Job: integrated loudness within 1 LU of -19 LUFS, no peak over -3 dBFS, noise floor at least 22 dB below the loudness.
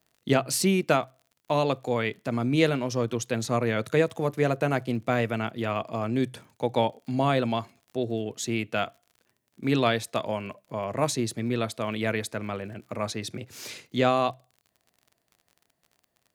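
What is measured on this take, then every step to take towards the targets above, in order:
tick rate 43 per s; loudness -27.5 LUFS; peak level -6.5 dBFS; loudness target -19.0 LUFS
-> de-click; trim +8.5 dB; peak limiter -3 dBFS

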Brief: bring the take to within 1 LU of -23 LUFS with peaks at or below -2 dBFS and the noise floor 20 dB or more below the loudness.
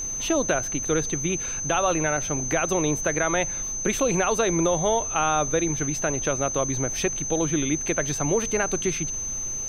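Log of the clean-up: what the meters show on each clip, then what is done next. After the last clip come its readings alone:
steady tone 6.2 kHz; tone level -28 dBFS; noise floor -31 dBFS; noise floor target -44 dBFS; loudness -24.0 LUFS; peak level -9.5 dBFS; loudness target -23.0 LUFS
-> band-stop 6.2 kHz, Q 30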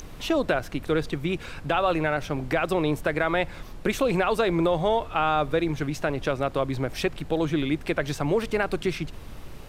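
steady tone not found; noise floor -41 dBFS; noise floor target -46 dBFS
-> noise print and reduce 6 dB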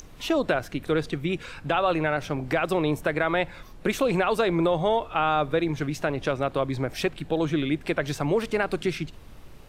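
noise floor -46 dBFS; loudness -26.0 LUFS; peak level -10.5 dBFS; loudness target -23.0 LUFS
-> trim +3 dB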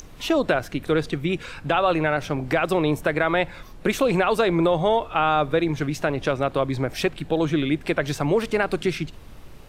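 loudness -23.0 LUFS; peak level -7.5 dBFS; noise floor -43 dBFS

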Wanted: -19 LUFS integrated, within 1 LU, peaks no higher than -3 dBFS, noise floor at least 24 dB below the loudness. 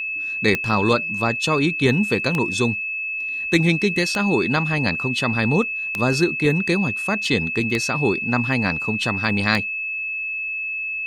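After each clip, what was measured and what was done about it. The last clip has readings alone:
clicks found 6; steady tone 2.6 kHz; tone level -24 dBFS; loudness -20.5 LUFS; peak level -2.5 dBFS; loudness target -19.0 LUFS
-> de-click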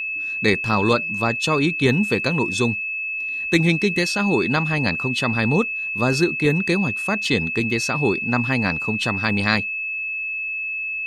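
clicks found 0; steady tone 2.6 kHz; tone level -24 dBFS
-> band-stop 2.6 kHz, Q 30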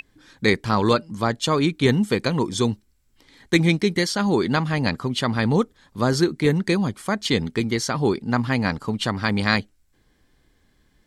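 steady tone not found; loudness -22.0 LUFS; peak level -2.5 dBFS; loudness target -19.0 LUFS
-> trim +3 dB; peak limiter -3 dBFS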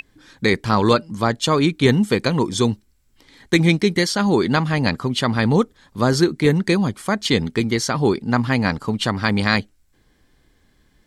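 loudness -19.0 LUFS; peak level -3.0 dBFS; noise floor -61 dBFS

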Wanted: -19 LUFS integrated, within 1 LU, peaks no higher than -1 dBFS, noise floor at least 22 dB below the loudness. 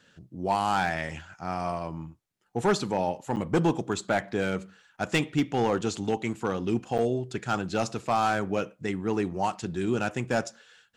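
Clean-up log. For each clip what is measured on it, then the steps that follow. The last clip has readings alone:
clipped samples 0.5%; clipping level -17.0 dBFS; dropouts 2; longest dropout 7.6 ms; loudness -29.0 LUFS; peak level -17.0 dBFS; loudness target -19.0 LUFS
-> clip repair -17 dBFS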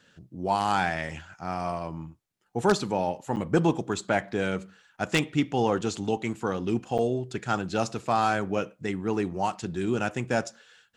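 clipped samples 0.0%; dropouts 2; longest dropout 7.6 ms
-> interpolate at 3.36/6.98 s, 7.6 ms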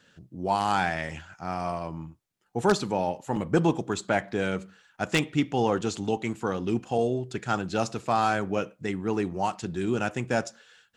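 dropouts 0; loudness -28.5 LUFS; peak level -8.0 dBFS; loudness target -19.0 LUFS
-> trim +9.5 dB; peak limiter -1 dBFS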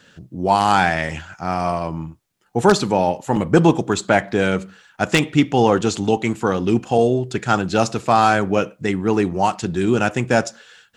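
loudness -19.0 LUFS; peak level -1.0 dBFS; noise floor -55 dBFS

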